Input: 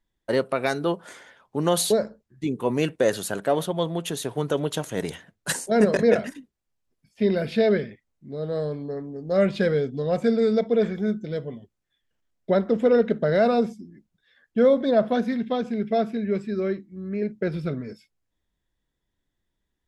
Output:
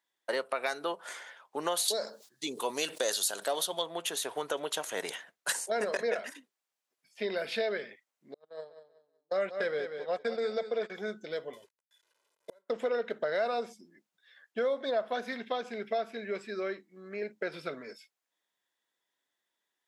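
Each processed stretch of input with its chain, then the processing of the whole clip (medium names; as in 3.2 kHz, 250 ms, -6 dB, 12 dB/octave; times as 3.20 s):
1.88–3.82 s: resonant high shelf 3 kHz +9 dB, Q 1.5 + decay stretcher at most 140 dB/s
8.34–10.90 s: gate -25 dBFS, range -40 dB + treble shelf 6.2 kHz -5 dB + feedback delay 188 ms, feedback 28%, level -11 dB
11.53–12.70 s: CVSD coder 64 kbps + inverted gate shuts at -20 dBFS, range -42 dB + comb 2 ms, depth 68%
whole clip: high-pass 660 Hz 12 dB/octave; compression 2.5:1, threshold -33 dBFS; trim +2 dB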